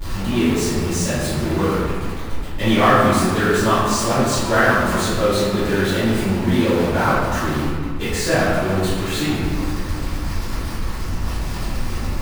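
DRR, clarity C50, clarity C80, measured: -14.5 dB, -2.5 dB, 0.5 dB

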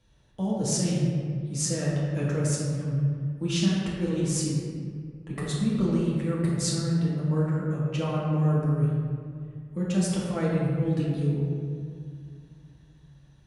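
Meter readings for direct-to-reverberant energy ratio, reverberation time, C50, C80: -7.0 dB, 2.2 s, -1.0 dB, 0.5 dB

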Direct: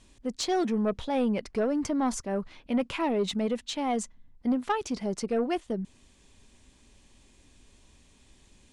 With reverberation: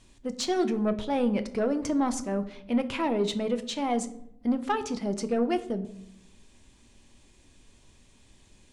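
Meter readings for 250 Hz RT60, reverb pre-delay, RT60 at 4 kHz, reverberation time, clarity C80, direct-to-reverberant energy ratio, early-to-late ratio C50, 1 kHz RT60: 1.2 s, 6 ms, 0.45 s, 0.75 s, 17.5 dB, 9.5 dB, 14.5 dB, 0.65 s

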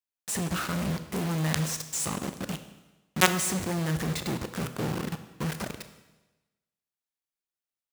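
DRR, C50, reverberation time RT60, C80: 9.0 dB, 11.0 dB, 1.1 s, 12.5 dB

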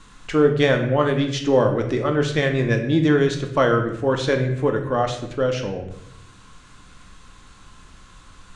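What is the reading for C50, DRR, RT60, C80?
7.5 dB, 4.0 dB, 0.75 s, 10.0 dB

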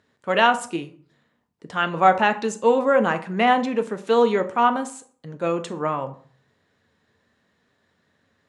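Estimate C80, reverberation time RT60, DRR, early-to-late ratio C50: 18.5 dB, 0.50 s, 8.0 dB, 14.5 dB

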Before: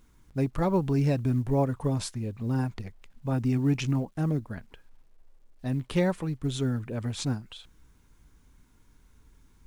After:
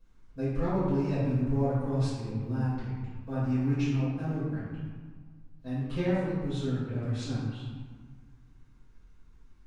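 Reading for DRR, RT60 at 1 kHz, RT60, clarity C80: -14.0 dB, 1.7 s, 1.6 s, 0.5 dB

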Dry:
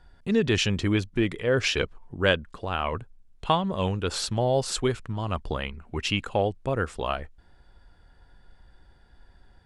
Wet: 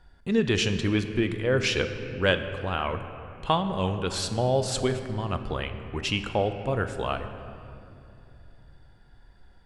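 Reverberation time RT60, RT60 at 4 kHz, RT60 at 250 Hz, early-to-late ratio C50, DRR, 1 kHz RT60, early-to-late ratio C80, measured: 2.7 s, 1.6 s, 3.9 s, 9.0 dB, 8.0 dB, 2.4 s, 10.0 dB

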